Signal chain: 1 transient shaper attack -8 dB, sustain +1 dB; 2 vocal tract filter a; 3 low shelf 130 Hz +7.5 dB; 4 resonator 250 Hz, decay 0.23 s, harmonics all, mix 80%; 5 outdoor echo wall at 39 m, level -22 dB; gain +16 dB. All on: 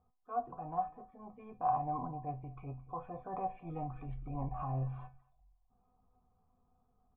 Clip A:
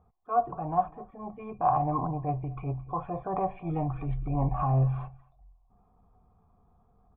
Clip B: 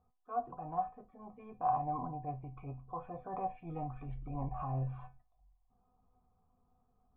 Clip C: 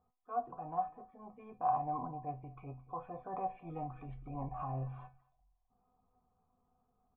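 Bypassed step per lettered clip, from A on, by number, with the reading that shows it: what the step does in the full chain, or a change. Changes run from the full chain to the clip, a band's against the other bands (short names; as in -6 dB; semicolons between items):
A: 4, 1 kHz band -3.0 dB; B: 5, momentary loudness spread change +1 LU; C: 3, 125 Hz band -3.5 dB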